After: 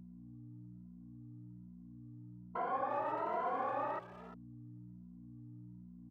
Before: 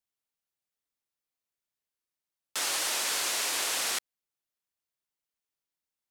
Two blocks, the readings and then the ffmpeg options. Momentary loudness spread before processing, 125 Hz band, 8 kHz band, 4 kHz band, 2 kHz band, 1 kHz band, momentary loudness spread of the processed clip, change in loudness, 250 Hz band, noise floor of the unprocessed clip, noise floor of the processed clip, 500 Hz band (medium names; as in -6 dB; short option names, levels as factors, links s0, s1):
5 LU, no reading, under -40 dB, under -35 dB, -14.5 dB, +3.5 dB, 18 LU, -10.0 dB, +6.0 dB, under -85 dBFS, -54 dBFS, +4.0 dB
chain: -filter_complex "[0:a]afftfilt=real='re*pow(10,17/40*sin(2*PI*(1.9*log(max(b,1)*sr/1024/100)/log(2)-(1.2)*(pts-256)/sr)))':imag='im*pow(10,17/40*sin(2*PI*(1.9*log(max(b,1)*sr/1024/100)/log(2)-(1.2)*(pts-256)/sr)))':win_size=1024:overlap=0.75,asplit=2[s0][s1];[s1]alimiter=level_in=1.06:limit=0.0631:level=0:latency=1:release=27,volume=0.944,volume=1.12[s2];[s0][s2]amix=inputs=2:normalize=0,aeval=exprs='val(0)+0.00316*(sin(2*PI*60*n/s)+sin(2*PI*2*60*n/s)/2+sin(2*PI*3*60*n/s)/3+sin(2*PI*4*60*n/s)/4+sin(2*PI*5*60*n/s)/5)':c=same,acompressor=threshold=0.00891:ratio=1.5,aeval=exprs='0.119*(cos(1*acos(clip(val(0)/0.119,-1,1)))-cos(1*PI/2))+0.00075*(cos(4*acos(clip(val(0)/0.119,-1,1)))-cos(4*PI/2))+0.00376*(cos(5*acos(clip(val(0)/0.119,-1,1)))-cos(5*PI/2))+0.000944*(cos(6*acos(clip(val(0)/0.119,-1,1)))-cos(6*PI/2))+0.00422*(cos(8*acos(clip(val(0)/0.119,-1,1)))-cos(8*PI/2))':c=same,highpass=f=110:w=0.5412,highpass=f=110:w=1.3066,acontrast=20,lowpass=f=1100:w=0.5412,lowpass=f=1100:w=1.3066,asplit=2[s3][s4];[s4]adelay=350,highpass=300,lowpass=3400,asoftclip=type=hard:threshold=0.0188,volume=0.251[s5];[s3][s5]amix=inputs=2:normalize=0,asplit=2[s6][s7];[s7]adelay=2.6,afreqshift=1.2[s8];[s6][s8]amix=inputs=2:normalize=1,volume=1.19"